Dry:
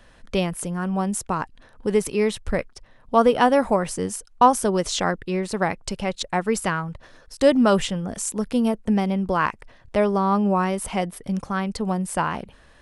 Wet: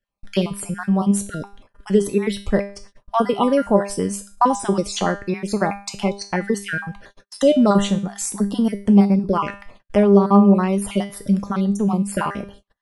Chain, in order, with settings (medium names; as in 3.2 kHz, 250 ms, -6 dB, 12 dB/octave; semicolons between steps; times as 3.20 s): random holes in the spectrogram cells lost 35%; dynamic bell 280 Hz, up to +5 dB, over -33 dBFS, Q 0.72; in parallel at +2 dB: compression, threshold -29 dBFS, peak gain reduction 19.5 dB; on the sum: feedback comb 200 Hz, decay 0.42 s, harmonics all, mix 80%; gate -51 dBFS, range -36 dB; trim +9 dB